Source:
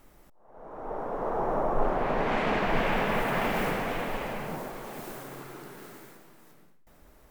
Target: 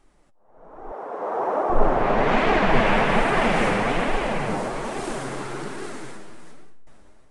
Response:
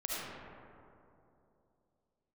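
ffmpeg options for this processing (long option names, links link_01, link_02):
-filter_complex "[0:a]dynaudnorm=framelen=360:gausssize=7:maxgain=16dB,flanger=delay=2.5:depth=7.5:regen=36:speed=1.2:shape=sinusoidal,asplit=2[link_01][link_02];[1:a]atrim=start_sample=2205,asetrate=48510,aresample=44100[link_03];[link_02][link_03]afir=irnorm=-1:irlink=0,volume=-26.5dB[link_04];[link_01][link_04]amix=inputs=2:normalize=0,aresample=22050,aresample=44100,asettb=1/sr,asplit=3[link_05][link_06][link_07];[link_05]atrim=end=0.924[link_08];[link_06]atrim=start=0.92:end=1.7,asetpts=PTS-STARTPTS,afade=type=in:duration=0.004:curve=qsin,afade=type=out:start_time=0.776:duration=0.004:curve=qsin,highpass=350[link_09];[link_07]atrim=start=1.696[link_10];[link_08][link_09]acrossfade=duration=0.004:curve1=hsin:curve2=qsin[link_11];[link_11][link_10]acrossfade=duration=0.004:curve1=qsin:curve2=hsin"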